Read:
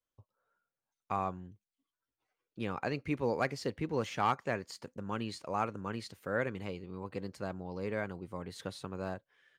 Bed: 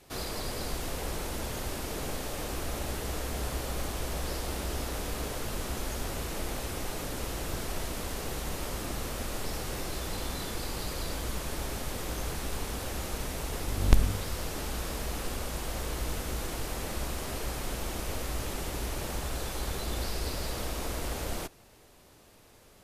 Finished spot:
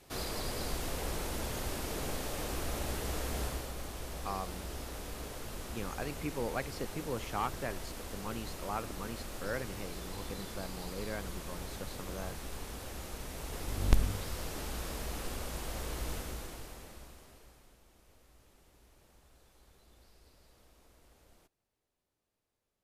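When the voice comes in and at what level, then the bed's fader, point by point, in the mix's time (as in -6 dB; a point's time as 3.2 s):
3.15 s, -4.5 dB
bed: 3.42 s -2 dB
3.74 s -8 dB
13.24 s -8 dB
13.75 s -4.5 dB
16.15 s -4.5 dB
17.83 s -29 dB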